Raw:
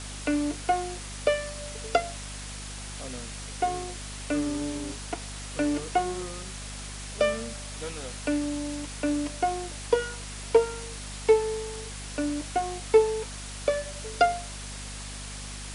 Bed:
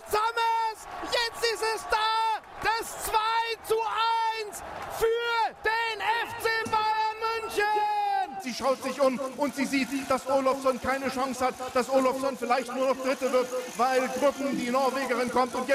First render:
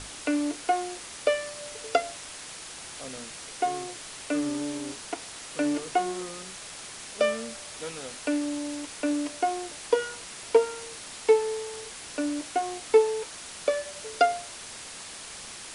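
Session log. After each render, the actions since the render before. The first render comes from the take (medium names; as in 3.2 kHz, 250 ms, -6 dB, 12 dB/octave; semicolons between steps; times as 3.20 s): hum notches 50/100/150/200/250 Hz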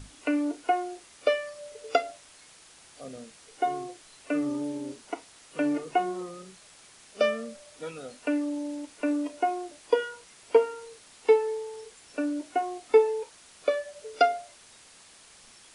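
noise print and reduce 12 dB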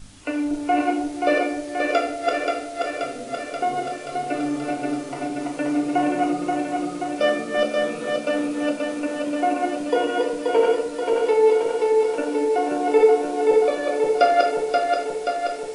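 backward echo that repeats 265 ms, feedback 81%, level -1.5 dB; simulated room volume 130 m³, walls mixed, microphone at 0.91 m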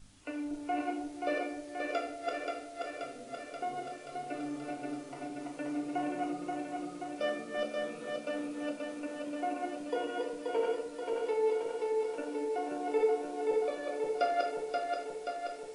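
trim -13.5 dB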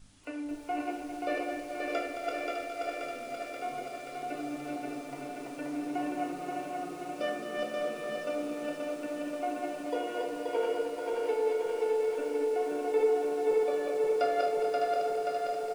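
delay 606 ms -6.5 dB; bit-crushed delay 217 ms, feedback 80%, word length 9-bit, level -9 dB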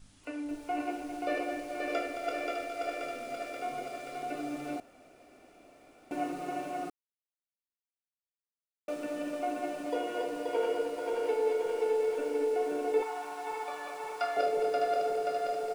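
4.80–6.11 s: room tone; 6.90–8.88 s: mute; 13.02–14.37 s: resonant low shelf 670 Hz -10 dB, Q 3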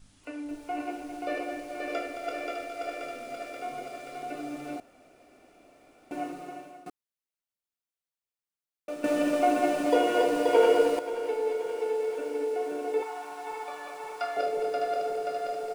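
6.17–6.86 s: fade out, to -18 dB; 9.04–10.99 s: gain +10 dB; 11.56–13.30 s: bass shelf 75 Hz -10.5 dB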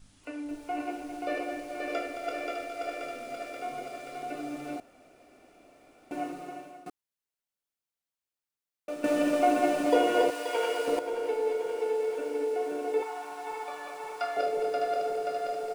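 10.30–10.88 s: high-pass 1.4 kHz 6 dB/octave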